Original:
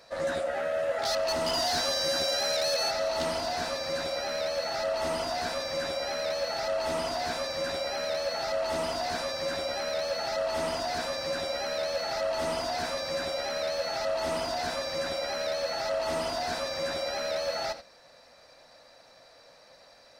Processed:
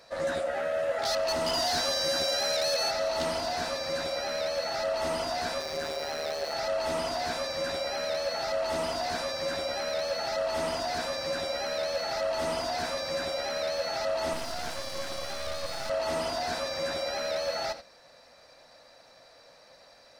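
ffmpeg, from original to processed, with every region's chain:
ffmpeg -i in.wav -filter_complex "[0:a]asettb=1/sr,asplit=3[link_01][link_02][link_03];[link_01]atrim=end=5.604[link_04];[link_02]atrim=start=5.6:end=6.53,asetpts=PTS-STARTPTS,afade=type=in:duration=0.004:curve=qsin,afade=type=out:start_time=0.926:duration=0.004:curve=qsin,aeval=exprs='val(0)+0.5*0.01*sgn(val(0))':channel_layout=same,tremolo=f=150:d=0.71[link_05];[link_03]atrim=start=6.526[link_06];[link_04][link_05]acrossfade=duration=0.004:curve1=hsin:curve2=qsin[link_07];[link_07][link_06]acrossfade=duration=0.004:curve1=qsin:curve2=hsin,asettb=1/sr,asplit=3[link_08][link_09][link_10];[link_08]atrim=end=14.334[link_11];[link_09]atrim=start=14.33:end=15.9,asetpts=PTS-STARTPTS,afade=type=in:duration=0.004:curve=qsin,afade=type=out:start_time=1.566:duration=0.004:curve=qsin,highshelf=frequency=5200:gain=3.5,aeval=exprs='max(val(0),0)':channel_layout=same[link_12];[link_10]atrim=start=15.896[link_13];[link_11][link_12]acrossfade=duration=0.004:curve1=hsin:curve2=qsin[link_14];[link_14][link_13]acrossfade=duration=0.004:curve1=qsin:curve2=hsin" out.wav

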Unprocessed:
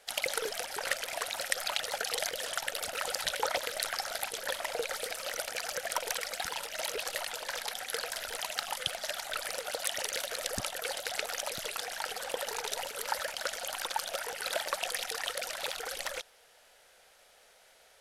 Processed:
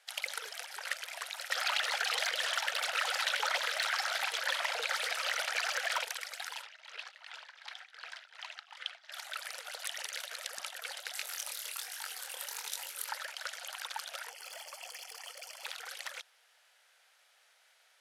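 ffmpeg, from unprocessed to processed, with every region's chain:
ffmpeg -i in.wav -filter_complex "[0:a]asettb=1/sr,asplit=3[link_01][link_02][link_03];[link_01]atrim=end=1.504[link_04];[link_02]atrim=start=1.5:end=6.05,asetpts=PTS-STARTPTS,afade=type=in:duration=0.004:curve=qsin,afade=type=out:start_time=4.546:duration=0.004:curve=qsin,asplit=2[link_05][link_06];[link_06]highpass=frequency=720:poles=1,volume=26dB,asoftclip=type=tanh:threshold=-5.5dB[link_07];[link_05][link_07]amix=inputs=2:normalize=0,lowpass=frequency=1600:poles=1,volume=-6dB,acrossover=split=260|3000[link_08][link_09][link_10];[link_09]acompressor=threshold=-35dB:ratio=1.5:attack=3.2:release=140:knee=2.83:detection=peak[link_11];[link_08][link_11][link_10]amix=inputs=3:normalize=0[link_12];[link_03]atrim=start=6.046[link_13];[link_04][link_12]acrossfade=duration=0.004:curve1=hsin:curve2=qsin[link_14];[link_14][link_13]acrossfade=duration=0.004:curve1=qsin:curve2=hsin,asettb=1/sr,asplit=3[link_15][link_16][link_17];[link_15]atrim=end=6.624[link_18];[link_16]atrim=start=6.62:end=9.12,asetpts=PTS-STARTPTS,afade=type=in:duration=0.004:curve=qsin,afade=type=out:start_time=2.496:duration=0.004:curve=qsin,highpass=700,lowpass=4000,tremolo=f=2.7:d=0.82[link_19];[link_17]atrim=start=9.116[link_20];[link_18][link_19]acrossfade=duration=0.004:curve1=hsin:curve2=qsin[link_21];[link_21][link_20]acrossfade=duration=0.004:curve1=qsin:curve2=hsin,asettb=1/sr,asplit=3[link_22][link_23][link_24];[link_22]atrim=end=11.124[link_25];[link_23]atrim=start=11.12:end=13.09,asetpts=PTS-STARTPTS,afade=type=in:duration=0.004:curve=qsin,afade=type=out:start_time=1.966:duration=0.004:curve=qsin,aemphasis=mode=production:type=50fm,bandreject=frequency=670:width=15,flanger=delay=20:depth=7.3:speed=1.2[link_26];[link_24]atrim=start=13.086[link_27];[link_25][link_26]acrossfade=duration=0.004:curve1=hsin:curve2=qsin[link_28];[link_28][link_27]acrossfade=duration=0.004:curve1=qsin:curve2=hsin,asettb=1/sr,asplit=3[link_29][link_30][link_31];[link_29]atrim=end=14.294[link_32];[link_30]atrim=start=14.29:end=15.65,asetpts=PTS-STARTPTS,afade=type=in:duration=0.004:curve=qsin,afade=type=out:start_time=1.356:duration=0.004:curve=qsin,equalizer=frequency=1600:width=1.8:gain=-12.5,asoftclip=type=hard:threshold=-33dB,asuperstop=centerf=3800:order=4:qfactor=4.6[link_33];[link_31]atrim=start=15.646[link_34];[link_32][link_33]acrossfade=duration=0.004:curve1=hsin:curve2=qsin[link_35];[link_35][link_34]acrossfade=duration=0.004:curve1=qsin:curve2=hsin,highpass=1100,highshelf=frequency=5600:gain=-6.5,volume=-2.5dB" out.wav

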